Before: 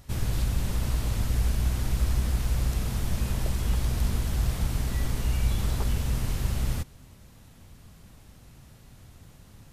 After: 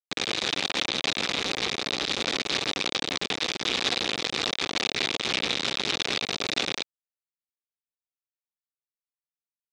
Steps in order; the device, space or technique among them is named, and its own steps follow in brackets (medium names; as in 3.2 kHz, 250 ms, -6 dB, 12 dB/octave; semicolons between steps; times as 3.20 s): hand-held game console (bit crusher 4-bit; cabinet simulation 420–5700 Hz, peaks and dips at 630 Hz -5 dB, 960 Hz -5 dB, 1.5 kHz -3 dB, 2.4 kHz +5 dB, 3.7 kHz +9 dB); trim +3 dB